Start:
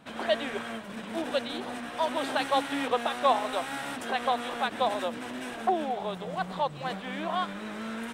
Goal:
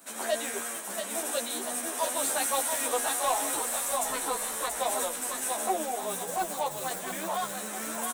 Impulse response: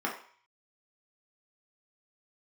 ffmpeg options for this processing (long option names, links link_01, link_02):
-filter_complex "[0:a]acrossover=split=150[link_01][link_02];[link_01]acrusher=bits=7:mix=0:aa=0.000001[link_03];[link_03][link_02]amix=inputs=2:normalize=0,equalizer=frequency=4800:width=2:gain=-9.5,asettb=1/sr,asplit=3[link_04][link_05][link_06];[link_04]atrim=end=3.544[link_07];[link_05]atrim=start=3.54:end=4.76,asetpts=PTS-STARTPTS,afade=type=in:duration=0.004:curve=qsin,afade=type=out:start_time=1.216:duration=0.004:curve=qsin,aeval=exprs='val(0)*sin(2*PI*260*n/s)':channel_layout=same[link_08];[link_06]atrim=start=4.756[link_09];[link_07][link_08]acrossfade=duration=0.004:curve1=hsin:curve2=qsin[link_10];[link_10][link_09]acrossfade=duration=0.004:curve1=qsin:curve2=hsin,bass=frequency=250:gain=-9,treble=frequency=4000:gain=6,asplit=2[link_11][link_12];[link_12]aecho=0:1:682|1364|2046|2728|3410:0.473|0.208|0.0916|0.0403|0.0177[link_13];[link_11][link_13]amix=inputs=2:normalize=0,aexciter=amount=3.8:drive=8.8:freq=4600,asoftclip=type=tanh:threshold=-20dB,asplit=2[link_14][link_15];[link_15]adelay=11.6,afreqshift=0.93[link_16];[link_14][link_16]amix=inputs=2:normalize=1,volume=2dB"